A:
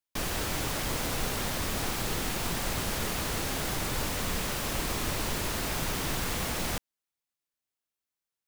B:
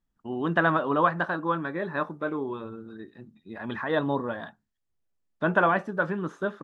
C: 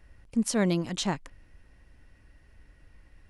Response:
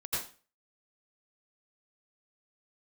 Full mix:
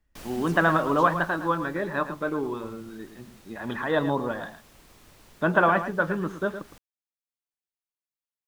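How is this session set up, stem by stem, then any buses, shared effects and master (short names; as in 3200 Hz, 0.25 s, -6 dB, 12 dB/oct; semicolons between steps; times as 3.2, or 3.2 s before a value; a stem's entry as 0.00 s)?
-10.0 dB, 0.00 s, no send, no echo send, auto duck -13 dB, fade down 1.90 s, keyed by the second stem
+1.5 dB, 0.00 s, no send, echo send -11 dB, dry
-18.0 dB, 0.00 s, no send, no echo send, dry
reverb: off
echo: echo 0.112 s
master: dry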